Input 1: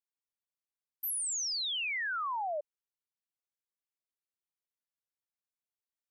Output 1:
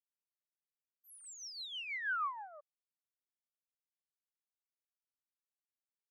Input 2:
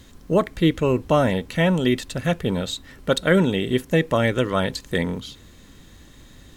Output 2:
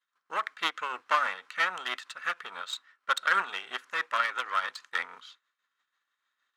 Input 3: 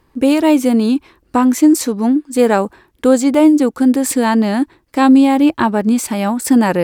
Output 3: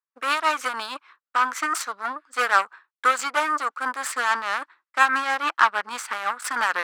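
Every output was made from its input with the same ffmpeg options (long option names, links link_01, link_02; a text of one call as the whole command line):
ffmpeg -i in.wav -af "agate=range=-33dB:threshold=-33dB:ratio=3:detection=peak,aeval=exprs='0.891*(cos(1*acos(clip(val(0)/0.891,-1,1)))-cos(1*PI/2))+0.0355*(cos(7*acos(clip(val(0)/0.891,-1,1)))-cos(7*PI/2))+0.0794*(cos(8*acos(clip(val(0)/0.891,-1,1)))-cos(8*PI/2))':channel_layout=same,adynamicsmooth=sensitivity=3:basefreq=5600,tremolo=f=6.2:d=0.47,highpass=frequency=1300:width_type=q:width=3.5,volume=-3dB" out.wav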